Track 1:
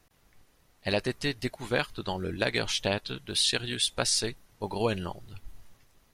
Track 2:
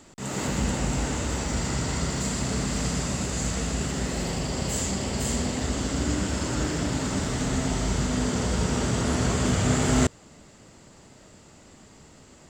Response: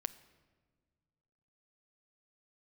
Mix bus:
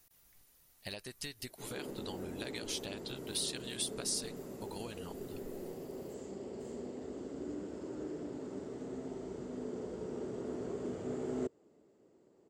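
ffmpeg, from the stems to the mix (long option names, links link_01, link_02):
-filter_complex "[0:a]acompressor=threshold=-33dB:ratio=10,volume=-8.5dB[link_01];[1:a]bandpass=frequency=390:width_type=q:width=3:csg=0,adelay=1400,volume=-5.5dB[link_02];[link_01][link_02]amix=inputs=2:normalize=0,aemphasis=mode=production:type=75fm"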